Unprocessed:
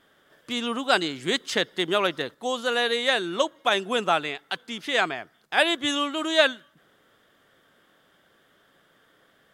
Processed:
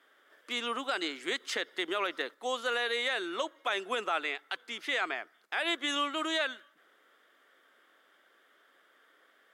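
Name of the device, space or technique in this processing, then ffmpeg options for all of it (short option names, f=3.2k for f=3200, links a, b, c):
laptop speaker: -af "highpass=f=290:w=0.5412,highpass=f=290:w=1.3066,equalizer=f=1.3k:t=o:w=0.53:g=4.5,equalizer=f=2.1k:t=o:w=0.6:g=5.5,alimiter=limit=-14.5dB:level=0:latency=1:release=70,volume=-6dB"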